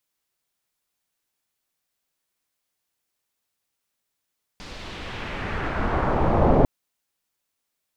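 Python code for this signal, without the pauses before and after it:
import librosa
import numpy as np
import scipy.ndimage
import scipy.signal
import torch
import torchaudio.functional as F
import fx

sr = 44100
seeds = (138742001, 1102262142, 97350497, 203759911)

y = fx.riser_noise(sr, seeds[0], length_s=2.05, colour='pink', kind='lowpass', start_hz=5000.0, end_hz=600.0, q=1.4, swell_db=27.0, law='exponential')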